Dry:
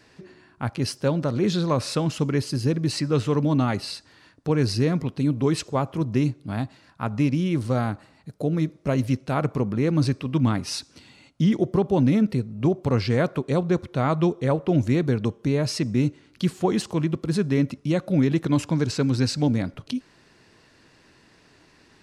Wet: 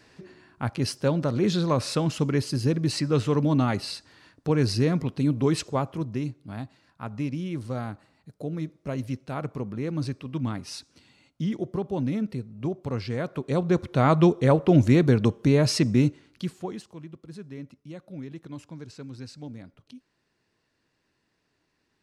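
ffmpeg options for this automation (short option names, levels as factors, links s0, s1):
-af "volume=3.16,afade=t=out:st=5.66:d=0.53:silence=0.446684,afade=t=in:st=13.25:d=0.85:silence=0.281838,afade=t=out:st=15.85:d=0.59:silence=0.298538,afade=t=out:st=16.44:d=0.43:silence=0.298538"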